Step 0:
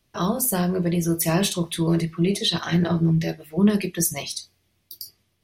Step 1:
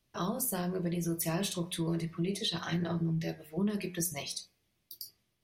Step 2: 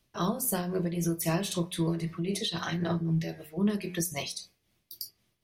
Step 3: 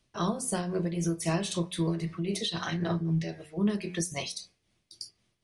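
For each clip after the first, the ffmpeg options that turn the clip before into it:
-af "bandreject=f=90.76:t=h:w=4,bandreject=f=181.52:t=h:w=4,bandreject=f=272.28:t=h:w=4,bandreject=f=363.04:t=h:w=4,bandreject=f=453.8:t=h:w=4,bandreject=f=544.56:t=h:w=4,bandreject=f=635.32:t=h:w=4,bandreject=f=726.08:t=h:w=4,bandreject=f=816.84:t=h:w=4,bandreject=f=907.6:t=h:w=4,bandreject=f=998.36:t=h:w=4,bandreject=f=1.08912k:t=h:w=4,bandreject=f=1.17988k:t=h:w=4,bandreject=f=1.27064k:t=h:w=4,bandreject=f=1.3614k:t=h:w=4,bandreject=f=1.45216k:t=h:w=4,bandreject=f=1.54292k:t=h:w=4,bandreject=f=1.63368k:t=h:w=4,bandreject=f=1.72444k:t=h:w=4,bandreject=f=1.8152k:t=h:w=4,bandreject=f=1.90596k:t=h:w=4,bandreject=f=1.99672k:t=h:w=4,bandreject=f=2.08748k:t=h:w=4,bandreject=f=2.17824k:t=h:w=4,bandreject=f=2.269k:t=h:w=4,bandreject=f=2.35976k:t=h:w=4,bandreject=f=2.45052k:t=h:w=4,bandreject=f=2.54128k:t=h:w=4,acompressor=threshold=-23dB:ratio=2.5,volume=-7.5dB"
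-af "tremolo=f=3.8:d=0.51,volume=5.5dB"
-af "aresample=22050,aresample=44100"

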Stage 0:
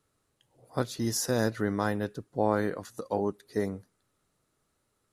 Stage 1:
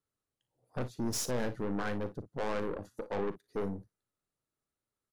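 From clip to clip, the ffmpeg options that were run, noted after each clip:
-af "afwtdn=0.0158,aeval=exprs='(tanh(39.8*val(0)+0.45)-tanh(0.45))/39.8':c=same,aecho=1:1:40|56:0.178|0.168,volume=2dB"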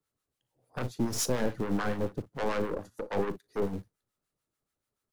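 -filter_complex "[0:a]acrossover=split=880[a][b];[a]aeval=exprs='val(0)*(1-0.7/2+0.7/2*cos(2*PI*6.9*n/s))':c=same[c];[b]aeval=exprs='val(0)*(1-0.7/2-0.7/2*cos(2*PI*6.9*n/s))':c=same[d];[c][d]amix=inputs=2:normalize=0,acrossover=split=150|540|3500[e][f][g][h];[e]acrusher=bits=3:mode=log:mix=0:aa=0.000001[i];[i][f][g][h]amix=inputs=4:normalize=0,volume=7dB"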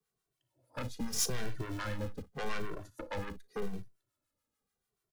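-filter_complex "[0:a]acrossover=split=130|1400[a][b][c];[b]acompressor=threshold=-39dB:ratio=6[d];[a][d][c]amix=inputs=3:normalize=0,asplit=2[e][f];[f]adelay=2.1,afreqshift=-0.84[g];[e][g]amix=inputs=2:normalize=1,volume=2.5dB"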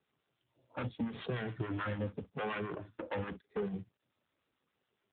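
-af "volume=3dB" -ar 8000 -c:a libopencore_amrnb -b:a 7400

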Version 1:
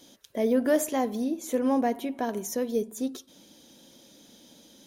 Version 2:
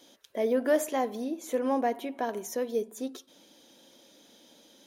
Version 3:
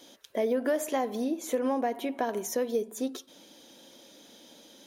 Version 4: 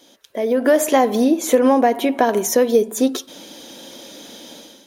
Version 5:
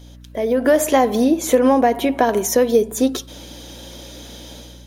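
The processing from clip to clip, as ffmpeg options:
-af "bass=f=250:g=-12,treble=f=4k:g=-5"
-af "acompressor=threshold=-28dB:ratio=6,volume=4dB"
-af "dynaudnorm=f=380:g=3:m=13dB,volume=2dB"
-af "aeval=exprs='val(0)+0.01*(sin(2*PI*60*n/s)+sin(2*PI*2*60*n/s)/2+sin(2*PI*3*60*n/s)/3+sin(2*PI*4*60*n/s)/4+sin(2*PI*5*60*n/s)/5)':c=same"

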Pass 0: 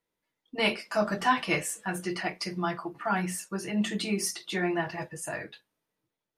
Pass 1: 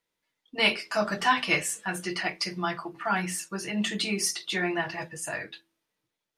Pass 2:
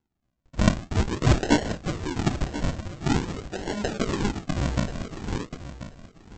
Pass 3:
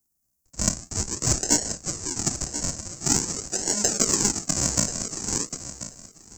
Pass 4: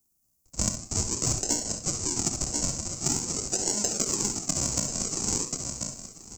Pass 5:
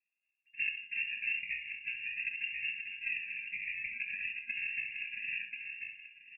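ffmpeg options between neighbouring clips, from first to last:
-af "equalizer=f=3.8k:w=0.37:g=7,bandreject=f=82.65:t=h:w=4,bandreject=f=165.3:t=h:w=4,bandreject=f=247.95:t=h:w=4,bandreject=f=330.6:t=h:w=4,bandreject=f=413.25:t=h:w=4,volume=-1.5dB"
-af "highpass=360,aresample=16000,acrusher=samples=26:mix=1:aa=0.000001:lfo=1:lforange=26:lforate=0.47,aresample=44100,aecho=1:1:1035|2070:0.224|0.0336,volume=5dB"
-filter_complex "[0:a]acrossover=split=140[a][b];[b]dynaudnorm=f=490:g=5:m=11.5dB[c];[a][c]amix=inputs=2:normalize=0,aexciter=amount=12.2:drive=8.9:freq=5.4k,volume=-8dB"
-filter_complex "[0:a]equalizer=f=1.7k:t=o:w=0.35:g=-9.5,acompressor=threshold=-25dB:ratio=10,asplit=2[a][b];[b]aecho=0:1:65|73:0.299|0.2[c];[a][c]amix=inputs=2:normalize=0,volume=2.5dB"
-filter_complex "[0:a]asplit=2[a][b];[b]adelay=16,volume=-11dB[c];[a][c]amix=inputs=2:normalize=0,lowpass=f=2.4k:t=q:w=0.5098,lowpass=f=2.4k:t=q:w=0.6013,lowpass=f=2.4k:t=q:w=0.9,lowpass=f=2.4k:t=q:w=2.563,afreqshift=-2800,afftfilt=real='re*(1-between(b*sr/4096,250,1600))':imag='im*(1-between(b*sr/4096,250,1600))':win_size=4096:overlap=0.75,volume=-4.5dB"

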